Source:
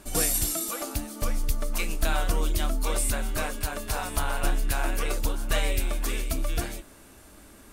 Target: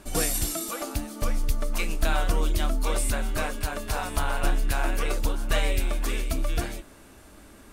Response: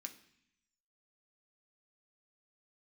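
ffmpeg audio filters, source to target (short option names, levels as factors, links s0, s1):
-af "highshelf=f=6500:g=-6,volume=1.19"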